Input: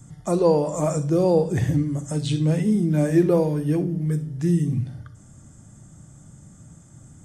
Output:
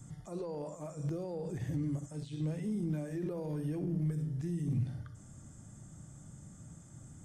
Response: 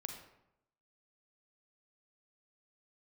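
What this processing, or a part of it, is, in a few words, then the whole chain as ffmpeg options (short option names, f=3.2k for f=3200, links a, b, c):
de-esser from a sidechain: -filter_complex "[0:a]asplit=2[a][b];[b]highpass=f=4.2k:p=1,apad=whole_len=319294[c];[a][c]sidechaincompress=threshold=-49dB:ratio=10:attack=0.53:release=45,volume=-5dB"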